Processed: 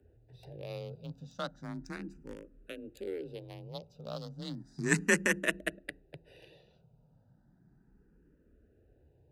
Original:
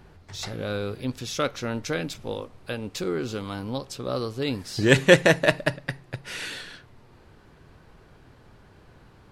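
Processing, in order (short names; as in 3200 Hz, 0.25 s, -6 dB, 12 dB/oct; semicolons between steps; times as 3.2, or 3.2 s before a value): Wiener smoothing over 41 samples; high shelf 4700 Hz +11 dB; de-hum 80.25 Hz, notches 4; frequency shift +29 Hz; endless phaser +0.34 Hz; gain -8 dB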